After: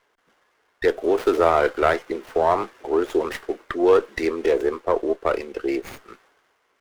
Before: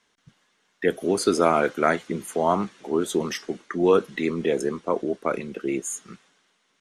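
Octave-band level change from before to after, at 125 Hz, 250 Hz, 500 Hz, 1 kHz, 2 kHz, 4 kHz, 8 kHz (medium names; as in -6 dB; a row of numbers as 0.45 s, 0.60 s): -5.0 dB, -1.0 dB, +3.5 dB, +2.5 dB, +2.0 dB, -1.5 dB, under -10 dB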